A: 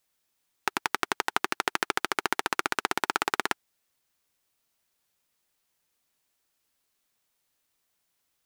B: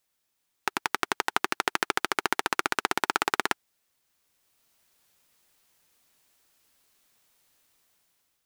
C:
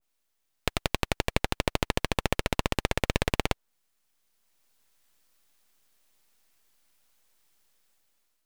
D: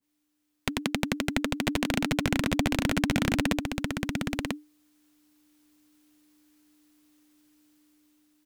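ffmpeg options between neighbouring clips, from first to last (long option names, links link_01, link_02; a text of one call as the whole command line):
ffmpeg -i in.wav -af "dynaudnorm=framelen=360:gausssize=5:maxgain=10dB,volume=-1dB" out.wav
ffmpeg -i in.wav -af "aeval=exprs='abs(val(0))':channel_layout=same,adynamicequalizer=threshold=0.00631:dfrequency=1800:dqfactor=0.7:tfrequency=1800:tqfactor=0.7:attack=5:release=100:ratio=0.375:range=2:mode=cutabove:tftype=highshelf,volume=1dB" out.wav
ffmpeg -i in.wav -af "afreqshift=-300,aecho=1:1:993:0.631" out.wav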